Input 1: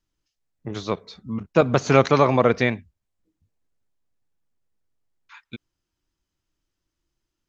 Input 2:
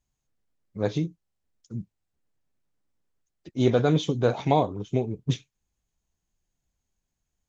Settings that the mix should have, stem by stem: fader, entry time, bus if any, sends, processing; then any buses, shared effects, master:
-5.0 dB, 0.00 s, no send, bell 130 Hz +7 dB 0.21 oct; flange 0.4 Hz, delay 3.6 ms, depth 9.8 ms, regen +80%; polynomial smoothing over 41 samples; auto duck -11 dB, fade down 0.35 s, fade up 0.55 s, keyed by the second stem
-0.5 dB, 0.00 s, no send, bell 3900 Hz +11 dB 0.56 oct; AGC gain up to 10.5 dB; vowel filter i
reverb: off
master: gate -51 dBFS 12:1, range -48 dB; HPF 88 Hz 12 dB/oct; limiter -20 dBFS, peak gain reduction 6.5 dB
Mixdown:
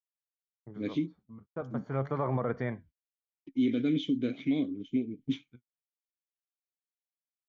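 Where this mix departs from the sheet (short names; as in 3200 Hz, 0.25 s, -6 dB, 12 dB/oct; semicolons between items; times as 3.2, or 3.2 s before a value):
stem 2: missing bell 3900 Hz +11 dB 0.56 oct; master: missing HPF 88 Hz 12 dB/oct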